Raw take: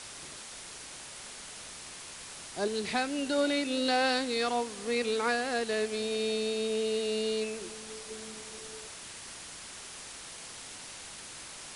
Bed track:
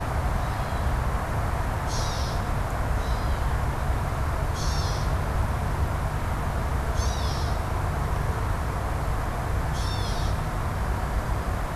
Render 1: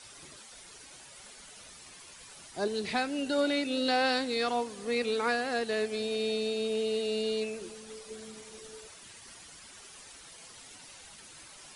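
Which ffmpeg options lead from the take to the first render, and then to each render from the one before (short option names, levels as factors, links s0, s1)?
-af "afftdn=nr=10:nf=-46"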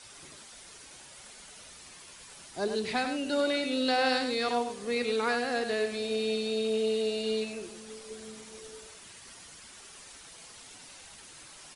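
-af "aecho=1:1:100:0.422"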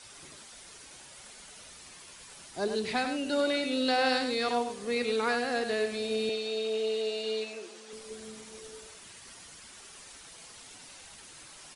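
-filter_complex "[0:a]asettb=1/sr,asplit=3[s0][s1][s2];[s0]atrim=end=6.294[s3];[s1]atrim=start=6.29:end=7.93,asetpts=PTS-STARTPTS,afade=t=in:d=0.004:c=qsin,afade=t=out:st=1.636:d=0.004:c=qsin,highpass=370,lowpass=7600[s4];[s2]atrim=start=7.926[s5];[s3][s4]acrossfade=d=0.004:c1=hsin:c2=qsin[s6];[s6][s5]acrossfade=d=0.004:c1=qsin:c2=hsin"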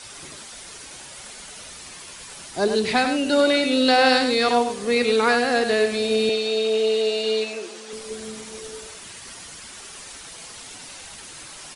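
-af "volume=3.16"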